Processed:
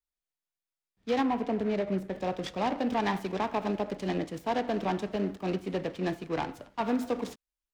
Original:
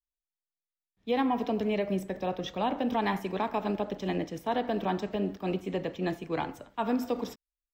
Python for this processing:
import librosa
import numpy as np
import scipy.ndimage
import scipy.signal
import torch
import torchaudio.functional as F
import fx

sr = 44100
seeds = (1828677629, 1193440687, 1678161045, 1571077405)

y = fx.high_shelf(x, sr, hz=2400.0, db=-10.0, at=(1.23, 2.13))
y = fx.noise_mod_delay(y, sr, seeds[0], noise_hz=1300.0, depth_ms=0.035)